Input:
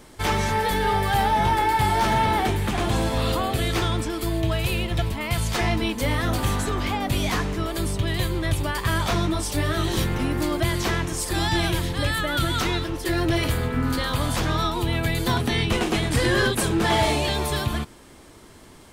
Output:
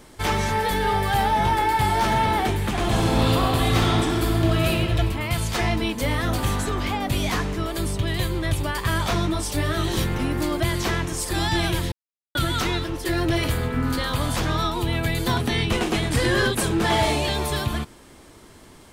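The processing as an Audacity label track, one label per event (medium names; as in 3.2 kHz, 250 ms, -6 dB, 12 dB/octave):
2.790000	4.670000	reverb throw, RT60 3 s, DRR -1.5 dB
11.920000	12.350000	mute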